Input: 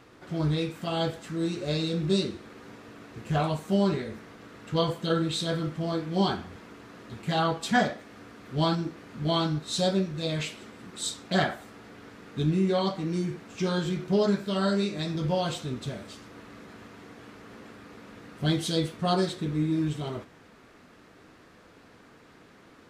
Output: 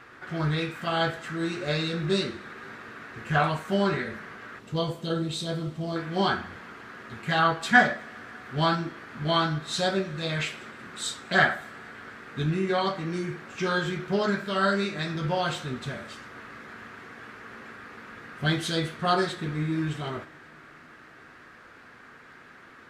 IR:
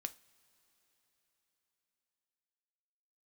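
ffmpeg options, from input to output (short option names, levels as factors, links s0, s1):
-filter_complex "[0:a]asetnsamples=n=441:p=0,asendcmd='4.59 equalizer g -3;5.96 equalizer g 12.5',equalizer=f=1600:t=o:w=1.3:g=14.5[s0];[1:a]atrim=start_sample=2205,asetrate=52920,aresample=44100[s1];[s0][s1]afir=irnorm=-1:irlink=0,volume=1.33"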